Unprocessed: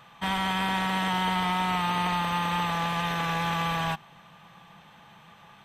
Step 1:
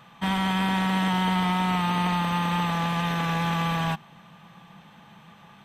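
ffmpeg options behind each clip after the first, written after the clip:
-af "equalizer=f=210:t=o:w=1.3:g=7"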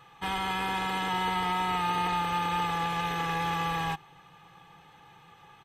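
-af "aecho=1:1:2.4:0.79,volume=-5dB"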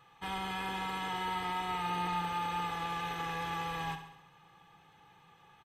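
-af "aecho=1:1:68|136|204|272|340|408|476:0.316|0.18|0.103|0.0586|0.0334|0.019|0.0108,volume=-7dB"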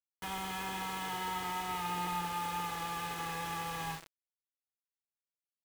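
-af "acrusher=bits=6:mix=0:aa=0.000001,volume=-2dB"

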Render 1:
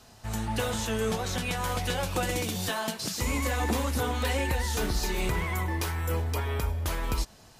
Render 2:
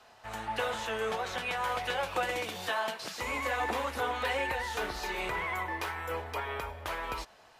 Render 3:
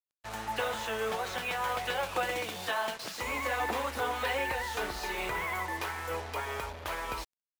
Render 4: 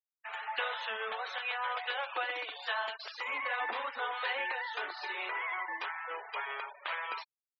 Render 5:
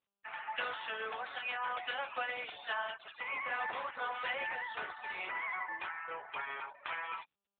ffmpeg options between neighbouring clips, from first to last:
-filter_complex "[0:a]acrossover=split=450 3300:gain=0.126 1 0.2[a][b][c];[a][b][c]amix=inputs=3:normalize=0,volume=1.5dB"
-af "acrusher=bits=6:mix=0:aa=0.5"
-af "adynamicequalizer=threshold=0.00355:dfrequency=2300:dqfactor=1.1:tfrequency=2300:tqfactor=1.1:attack=5:release=100:ratio=0.375:range=3:mode=cutabove:tftype=bell,bandpass=f=2.3k:t=q:w=1:csg=0,afftfilt=real='re*gte(hypot(re,im),0.00562)':imag='im*gte(hypot(re,im),0.00562)':win_size=1024:overlap=0.75,volume=5dB"
-af "volume=-1.5dB" -ar 8000 -c:a libopencore_amrnb -b:a 10200

